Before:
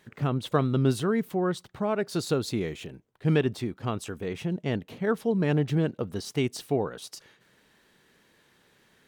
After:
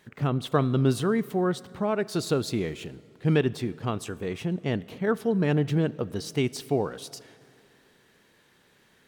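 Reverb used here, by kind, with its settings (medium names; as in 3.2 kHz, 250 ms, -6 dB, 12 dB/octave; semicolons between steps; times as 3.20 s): plate-style reverb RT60 2.7 s, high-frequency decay 0.75×, DRR 19 dB; trim +1 dB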